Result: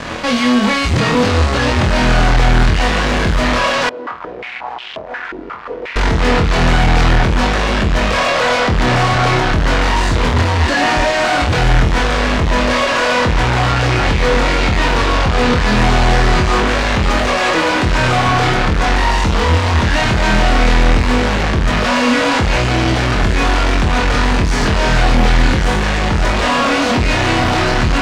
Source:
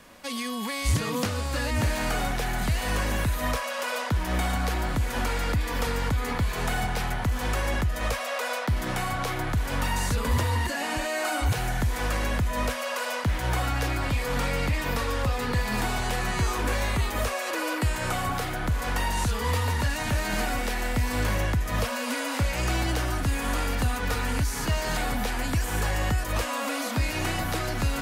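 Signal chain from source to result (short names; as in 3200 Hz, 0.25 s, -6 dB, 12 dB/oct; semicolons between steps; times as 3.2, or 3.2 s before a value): fuzz box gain 47 dB, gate -52 dBFS; air absorption 130 m; flutter echo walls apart 4.2 m, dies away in 0.27 s; 3.89–5.96 stepped band-pass 5.6 Hz 330–3100 Hz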